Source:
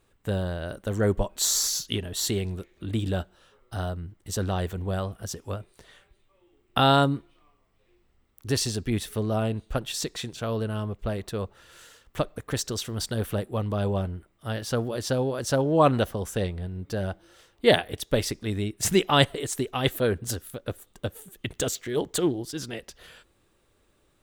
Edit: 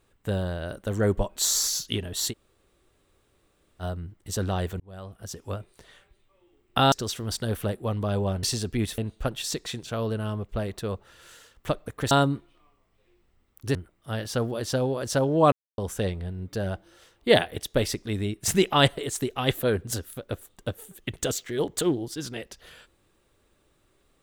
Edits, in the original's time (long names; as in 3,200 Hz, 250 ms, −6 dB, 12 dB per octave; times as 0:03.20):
0:02.31–0:03.82: fill with room tone, crossfade 0.06 s
0:04.80–0:05.53: fade in
0:06.92–0:08.56: swap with 0:12.61–0:14.12
0:09.11–0:09.48: remove
0:15.89–0:16.15: silence